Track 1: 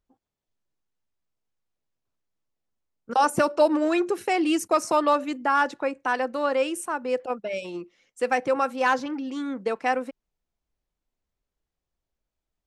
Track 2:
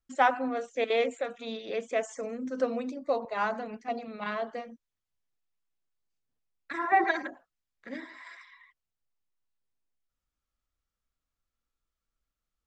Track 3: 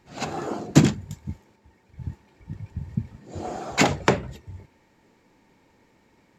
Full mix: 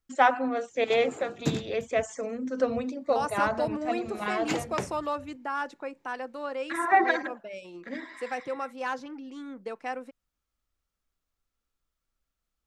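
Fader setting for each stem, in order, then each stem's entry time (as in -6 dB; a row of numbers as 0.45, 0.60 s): -10.0, +2.5, -13.0 dB; 0.00, 0.00, 0.70 s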